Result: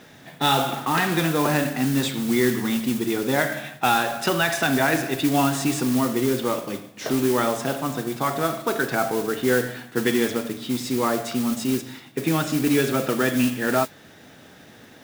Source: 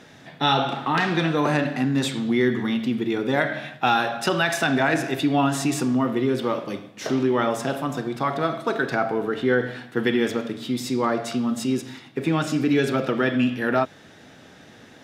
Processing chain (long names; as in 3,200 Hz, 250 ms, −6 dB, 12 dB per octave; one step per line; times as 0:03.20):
noise that follows the level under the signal 13 dB